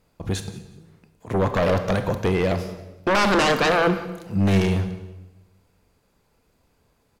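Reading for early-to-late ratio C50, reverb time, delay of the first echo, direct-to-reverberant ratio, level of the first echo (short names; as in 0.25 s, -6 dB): 10.0 dB, 1.0 s, 0.182 s, 8.0 dB, -20.0 dB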